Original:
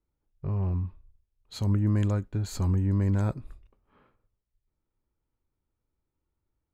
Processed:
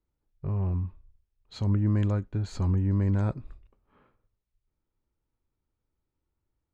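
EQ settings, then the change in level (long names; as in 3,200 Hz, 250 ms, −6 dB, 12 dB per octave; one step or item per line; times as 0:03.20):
high-frequency loss of the air 99 metres
0.0 dB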